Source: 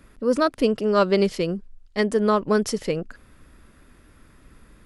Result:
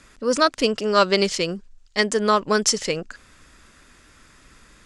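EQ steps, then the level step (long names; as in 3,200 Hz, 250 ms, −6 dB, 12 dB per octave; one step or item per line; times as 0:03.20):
low-pass with resonance 7,100 Hz, resonance Q 2.2
tilt shelving filter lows −5.5 dB, about 770 Hz
+2.0 dB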